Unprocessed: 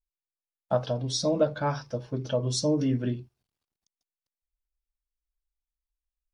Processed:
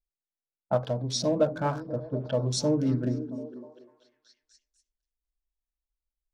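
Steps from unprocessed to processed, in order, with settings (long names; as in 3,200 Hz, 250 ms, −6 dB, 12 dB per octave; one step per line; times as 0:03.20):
adaptive Wiener filter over 15 samples
low-pass that shuts in the quiet parts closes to 670 Hz, open at −27 dBFS
on a send: echo through a band-pass that steps 246 ms, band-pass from 200 Hz, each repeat 0.7 octaves, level −8 dB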